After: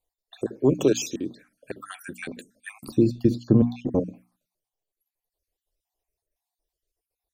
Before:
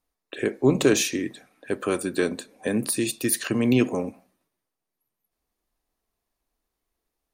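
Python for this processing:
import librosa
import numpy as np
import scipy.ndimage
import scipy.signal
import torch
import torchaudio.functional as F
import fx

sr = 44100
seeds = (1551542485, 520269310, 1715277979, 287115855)

y = fx.spec_dropout(x, sr, seeds[0], share_pct=49)
y = fx.env_phaser(y, sr, low_hz=230.0, high_hz=2000.0, full_db=-27.5)
y = fx.tilt_eq(y, sr, slope=-4.5, at=(2.88, 4.0))
y = fx.hum_notches(y, sr, base_hz=60, count=5)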